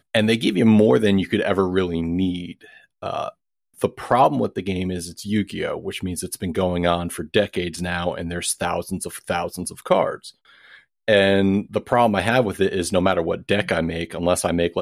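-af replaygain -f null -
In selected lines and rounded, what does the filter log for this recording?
track_gain = +0.2 dB
track_peak = 0.440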